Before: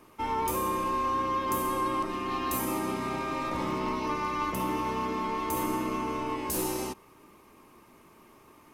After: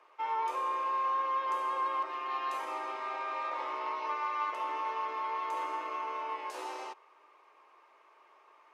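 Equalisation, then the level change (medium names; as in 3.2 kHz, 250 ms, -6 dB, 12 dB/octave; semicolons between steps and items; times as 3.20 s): Bessel high-pass 800 Hz, order 6; tape spacing loss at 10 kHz 28 dB; +3.0 dB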